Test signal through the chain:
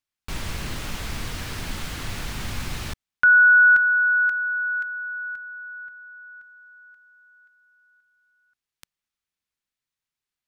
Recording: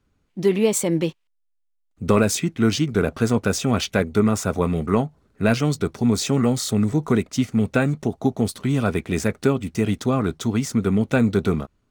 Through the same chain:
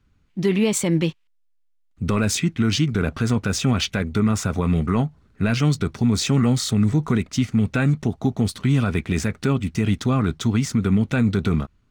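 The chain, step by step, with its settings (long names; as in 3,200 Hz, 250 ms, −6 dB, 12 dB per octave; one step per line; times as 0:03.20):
low-pass filter 3,300 Hz 6 dB per octave
parametric band 530 Hz −10 dB 2.2 octaves
brickwall limiter −17 dBFS
level +7 dB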